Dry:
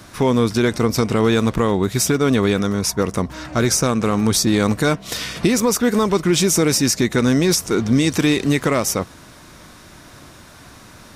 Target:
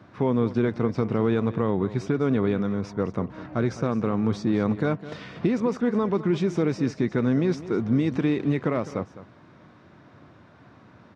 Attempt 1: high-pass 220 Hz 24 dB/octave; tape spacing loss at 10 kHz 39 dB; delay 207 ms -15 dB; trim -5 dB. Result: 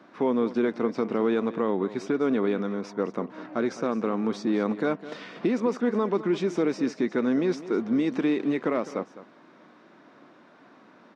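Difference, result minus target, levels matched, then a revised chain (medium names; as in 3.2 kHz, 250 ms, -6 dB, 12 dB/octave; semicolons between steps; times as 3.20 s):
125 Hz band -10.5 dB
high-pass 91 Hz 24 dB/octave; tape spacing loss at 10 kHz 39 dB; delay 207 ms -15 dB; trim -5 dB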